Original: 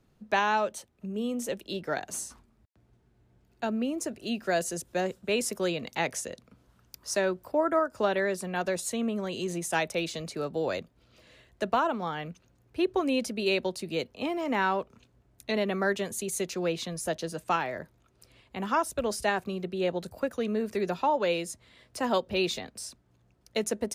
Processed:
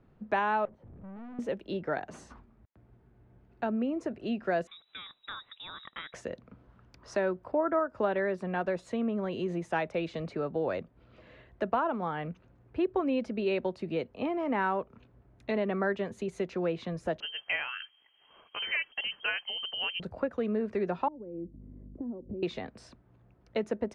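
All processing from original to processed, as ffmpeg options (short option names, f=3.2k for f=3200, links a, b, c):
-filter_complex "[0:a]asettb=1/sr,asplit=3[a][b][c];[a]atrim=end=0.654[d];[b]atrim=start=0.65:end=1.39,asetpts=PTS-STARTPTS,afade=t=in:d=0.004:c=qsin,afade=t=out:st=0.736:d=0.004:c=qsin,aeval=exprs='val(0)+0.5*0.0075*sgn(val(0))':c=same,bandpass=f=100:t=q:w=0.64,aeval=exprs='(tanh(251*val(0)+0.35)-tanh(0.35))/251':c=same[e];[c]atrim=start=1.386[f];[d][e]acrossfade=d=0.004:c1=hsin:c2=qsin[g];[g][f]acrossfade=d=0.004:c1=qsin:c2=hsin,asettb=1/sr,asplit=3[h][i][j];[h]atrim=end=4.674[k];[i]atrim=start=4.67:end=6.14,asetpts=PTS-STARTPTS,afade=t=in:d=0.004:c=qsin,afade=t=out:st=1.466:d=0.004:c=qsin,acrossover=split=230|3100[l][m][n];[l]acompressor=threshold=-45dB:ratio=4[o];[m]acompressor=threshold=-42dB:ratio=4[p];[n]acompressor=threshold=-47dB:ratio=4[q];[o][p][q]amix=inputs=3:normalize=0,lowpass=f=3.4k:t=q:w=0.5098,lowpass=f=3.4k:t=q:w=0.6013,lowpass=f=3.4k:t=q:w=0.9,lowpass=f=3.4k:t=q:w=2.563,afreqshift=-4000[r];[j]atrim=start=6.136[s];[k][r]acrossfade=d=0.004:c1=hsin:c2=qsin[t];[t][s]acrossfade=d=0.004:c1=qsin:c2=hsin,asettb=1/sr,asplit=3[u][v][w];[u]atrim=end=17.204[x];[v]atrim=start=17.2:end=20,asetpts=PTS-STARTPTS,afade=t=in:d=0.004:c=qsin,afade=t=out:st=2.796:d=0.004:c=qsin,equalizer=f=150:w=1.6:g=8,lowpass=f=2.8k:t=q:w=0.5098,lowpass=f=2.8k:t=q:w=0.6013,lowpass=f=2.8k:t=q:w=0.9,lowpass=f=2.8k:t=q:w=2.563,afreqshift=-3300[y];[w]atrim=start=19.996[z];[x][y]acrossfade=d=0.004:c1=hsin:c2=qsin[aa];[aa][z]acrossfade=d=0.004:c1=qsin:c2=hsin,asettb=1/sr,asplit=3[ab][ac][ad];[ab]atrim=end=21.084[ae];[ac]atrim=start=21.08:end=22.43,asetpts=PTS-STARTPTS,afade=t=in:d=0.004:c=qsin,afade=t=out:st=1.346:d=0.004:c=qsin,aeval=exprs='val(0)+0.00224*(sin(2*PI*50*n/s)+sin(2*PI*2*50*n/s)/2+sin(2*PI*3*50*n/s)/3+sin(2*PI*4*50*n/s)/4+sin(2*PI*5*50*n/s)/5)':c=same,acompressor=threshold=-42dB:ratio=4:attack=3.2:release=140:knee=1:detection=peak,lowpass=f=300:t=q:w=2.7[af];[ad]atrim=start=22.426[ag];[ae][af]acrossfade=d=0.004:c1=hsin:c2=qsin[ah];[ah][ag]acrossfade=d=0.004:c1=qsin:c2=hsin,lowpass=1.9k,acompressor=threshold=-41dB:ratio=1.5,volume=4.5dB"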